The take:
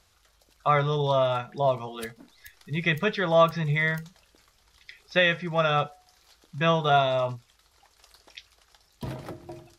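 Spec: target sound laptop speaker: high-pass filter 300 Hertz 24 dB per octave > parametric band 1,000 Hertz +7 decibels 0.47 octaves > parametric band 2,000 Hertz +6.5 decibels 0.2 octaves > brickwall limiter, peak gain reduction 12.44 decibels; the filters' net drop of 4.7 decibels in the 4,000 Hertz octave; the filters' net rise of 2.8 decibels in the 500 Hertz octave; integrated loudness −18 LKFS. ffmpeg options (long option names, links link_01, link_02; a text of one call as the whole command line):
ffmpeg -i in.wav -af "highpass=frequency=300:width=0.5412,highpass=frequency=300:width=1.3066,equalizer=frequency=500:width_type=o:gain=3,equalizer=frequency=1000:width_type=o:width=0.47:gain=7,equalizer=frequency=2000:width_type=o:width=0.2:gain=6.5,equalizer=frequency=4000:width_type=o:gain=-6,volume=10dB,alimiter=limit=-7dB:level=0:latency=1" out.wav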